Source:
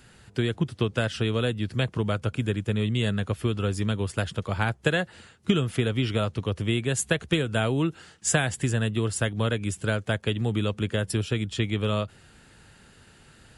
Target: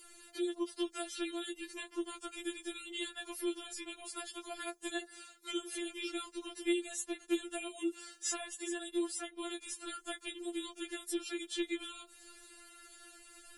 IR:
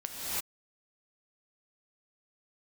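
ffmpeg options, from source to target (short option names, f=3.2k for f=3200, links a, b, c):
-filter_complex "[0:a]acrossover=split=290|4400[a][b][c];[a]acompressor=threshold=-30dB:ratio=4[d];[b]acompressor=threshold=-38dB:ratio=4[e];[c]acompressor=threshold=-49dB:ratio=4[f];[d][e][f]amix=inputs=3:normalize=0,aemphasis=mode=production:type=50kf,afftfilt=real='re*4*eq(mod(b,16),0)':imag='im*4*eq(mod(b,16),0)':win_size=2048:overlap=0.75,volume=-2dB"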